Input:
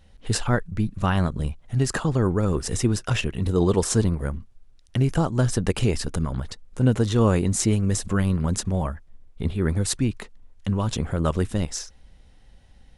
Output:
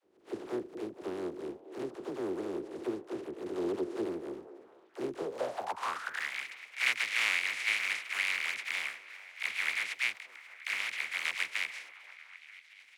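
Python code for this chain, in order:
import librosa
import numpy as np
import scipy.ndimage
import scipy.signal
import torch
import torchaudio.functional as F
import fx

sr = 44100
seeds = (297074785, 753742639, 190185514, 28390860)

p1 = fx.spec_flatten(x, sr, power=0.14)
p2 = fx.dispersion(p1, sr, late='lows', ms=51.0, hz=400.0)
p3 = p2 + fx.echo_stepped(p2, sr, ms=233, hz=400.0, octaves=0.7, feedback_pct=70, wet_db=-9.5, dry=0)
p4 = fx.filter_sweep_bandpass(p3, sr, from_hz=360.0, to_hz=2200.0, start_s=5.15, end_s=6.33, q=5.8)
y = F.gain(torch.from_numpy(p4), 2.5).numpy()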